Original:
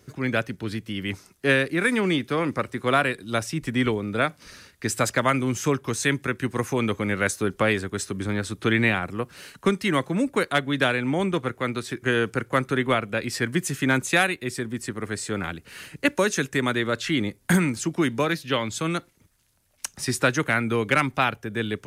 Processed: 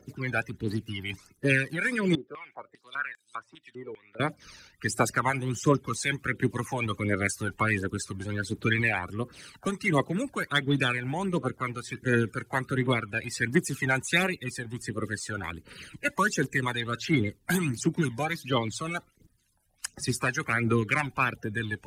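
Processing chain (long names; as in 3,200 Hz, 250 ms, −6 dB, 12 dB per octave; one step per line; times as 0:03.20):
spectral magnitudes quantised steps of 30 dB
phase shifter 1.4 Hz, delay 1.4 ms, feedback 59%
0:02.15–0:04.20: band-pass on a step sequencer 5 Hz 450–7,400 Hz
level −5.5 dB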